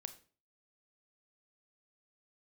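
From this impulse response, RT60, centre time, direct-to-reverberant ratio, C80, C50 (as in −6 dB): 0.40 s, 6 ms, 10.0 dB, 18.0 dB, 14.0 dB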